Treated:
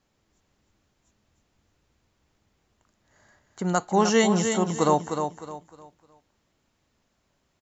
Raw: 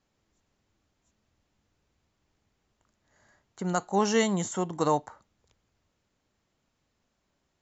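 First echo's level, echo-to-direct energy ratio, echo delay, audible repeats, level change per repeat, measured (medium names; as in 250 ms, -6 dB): -7.0 dB, -6.5 dB, 306 ms, 3, -10.5 dB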